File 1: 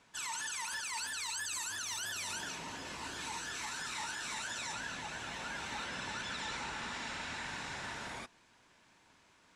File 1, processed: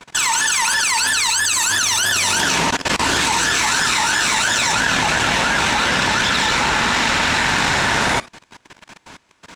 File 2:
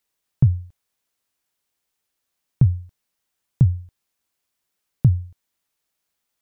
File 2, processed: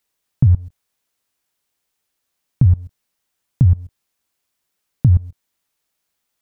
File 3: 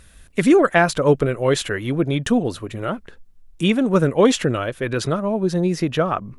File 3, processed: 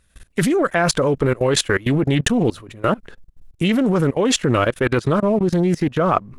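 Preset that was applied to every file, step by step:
in parallel at −5 dB: dead-zone distortion −42 dBFS
on the sum: output level in coarse steps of 22 dB
highs frequency-modulated by the lows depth 0.19 ms
normalise the peak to −3 dBFS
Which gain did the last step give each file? +26.5, +12.5, +5.5 decibels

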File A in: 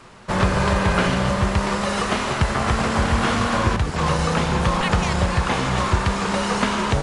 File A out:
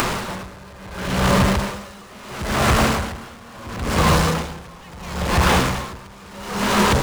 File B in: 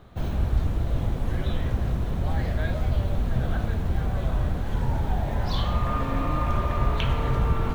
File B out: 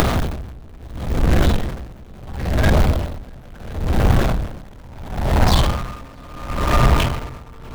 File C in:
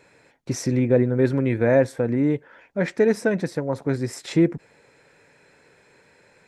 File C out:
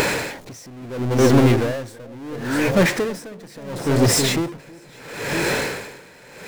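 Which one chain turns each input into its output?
power curve on the samples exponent 0.35
on a send: delay that swaps between a low-pass and a high-pass 322 ms, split 860 Hz, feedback 54%, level −5.5 dB
on the sum: upward compression, threshold −14 dBFS
mains-hum notches 50/100/150 Hz
tremolo with a sine in dB 0.73 Hz, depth 26 dB
loudness normalisation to −20 LKFS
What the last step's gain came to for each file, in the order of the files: −3.5, +3.5, −0.5 decibels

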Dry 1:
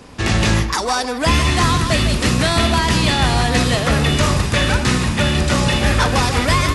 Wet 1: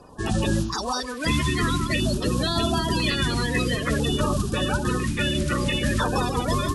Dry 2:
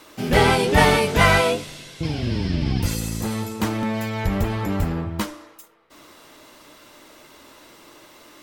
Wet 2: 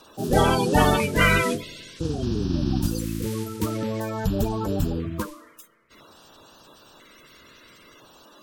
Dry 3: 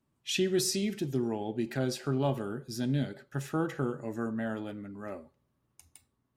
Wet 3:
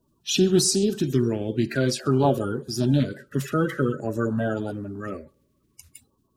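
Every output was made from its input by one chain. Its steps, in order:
spectral magnitudes quantised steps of 30 dB
auto-filter notch square 0.5 Hz 790–2,100 Hz
loudness normalisation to −24 LKFS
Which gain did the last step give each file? −6.0, −1.0, +10.0 decibels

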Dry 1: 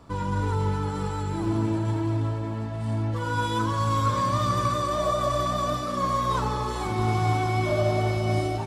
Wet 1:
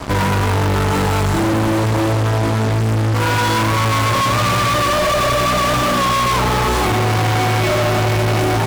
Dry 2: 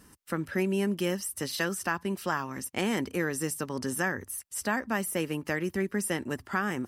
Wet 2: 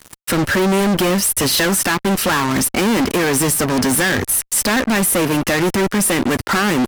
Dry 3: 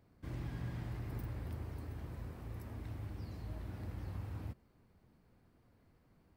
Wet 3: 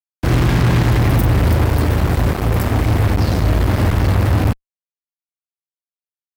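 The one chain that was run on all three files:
dynamic equaliser 5,800 Hz, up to −4 dB, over −46 dBFS, Q 0.79
in parallel at +2 dB: downward compressor, threshold −34 dBFS
on the sum: fuzz pedal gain 39 dB, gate −43 dBFS
loudness normalisation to −16 LKFS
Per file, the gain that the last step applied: −1.5, −0.5, +3.5 decibels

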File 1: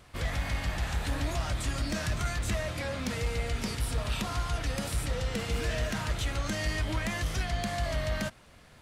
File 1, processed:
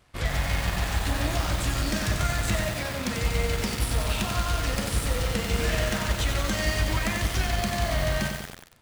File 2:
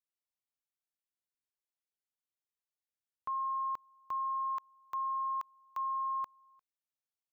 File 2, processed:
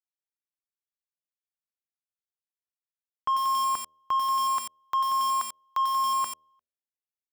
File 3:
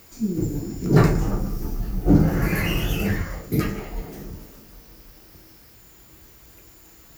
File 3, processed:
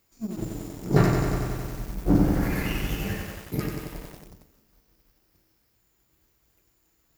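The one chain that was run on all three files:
power curve on the samples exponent 1.4
hum removal 78.49 Hz, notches 8
feedback echo at a low word length 92 ms, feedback 80%, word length 7 bits, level −4.5 dB
loudness normalisation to −27 LKFS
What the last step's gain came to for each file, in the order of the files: +6.0, +11.5, −1.0 decibels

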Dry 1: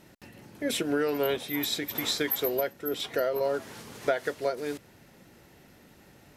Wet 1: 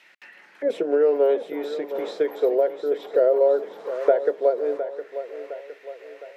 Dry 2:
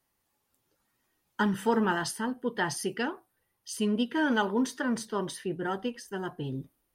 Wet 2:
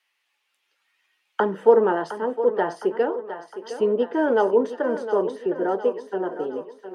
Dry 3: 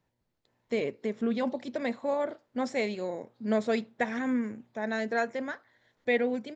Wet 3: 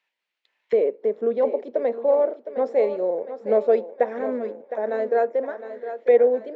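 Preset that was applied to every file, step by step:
elliptic high-pass filter 170 Hz, stop band 40 dB
envelope filter 490–2,600 Hz, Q 2.3, down, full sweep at −34.5 dBFS
parametric band 230 Hz −6.5 dB 1.1 octaves
on a send: feedback echo with a high-pass in the loop 711 ms, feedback 54%, high-pass 260 Hz, level −10.5 dB
on the sum: loudness normalisation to −23 LKFS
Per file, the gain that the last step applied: +13.0, +16.5, +14.0 decibels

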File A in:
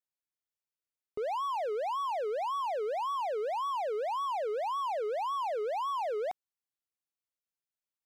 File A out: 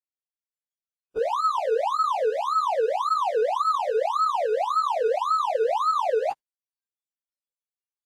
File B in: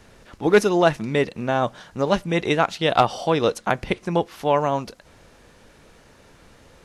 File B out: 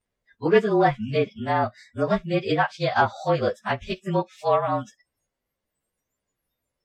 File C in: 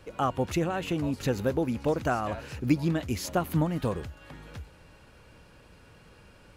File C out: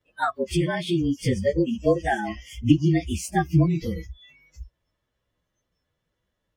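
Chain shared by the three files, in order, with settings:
partials spread apart or drawn together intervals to 109%
noise reduction from a noise print of the clip's start 29 dB
treble cut that deepens with the level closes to 2,900 Hz, closed at −19.5 dBFS
loudness normalisation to −24 LKFS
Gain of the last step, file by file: +13.0, +0.5, +8.5 decibels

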